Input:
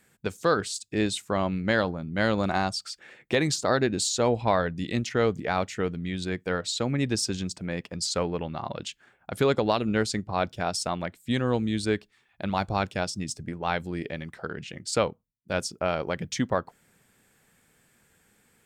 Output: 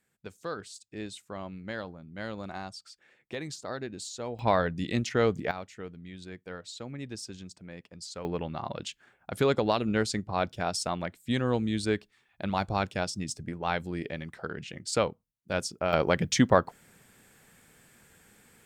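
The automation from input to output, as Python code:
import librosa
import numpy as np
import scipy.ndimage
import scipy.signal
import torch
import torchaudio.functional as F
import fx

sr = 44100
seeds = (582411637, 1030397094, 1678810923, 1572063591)

y = fx.gain(x, sr, db=fx.steps((0.0, -13.0), (4.39, -1.0), (5.51, -13.0), (8.25, -2.0), (15.93, 5.0)))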